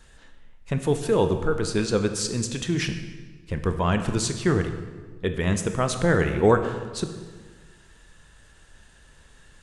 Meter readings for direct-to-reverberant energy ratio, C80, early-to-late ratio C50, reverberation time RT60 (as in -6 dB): 7.0 dB, 10.0 dB, 9.0 dB, 1.5 s